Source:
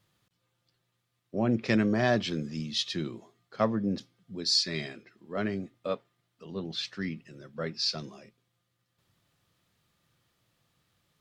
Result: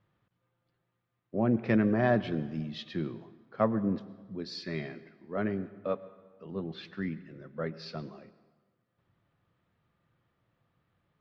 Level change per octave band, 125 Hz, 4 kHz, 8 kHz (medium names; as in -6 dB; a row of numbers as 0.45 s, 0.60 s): 0.0 dB, -15.0 dB, under -20 dB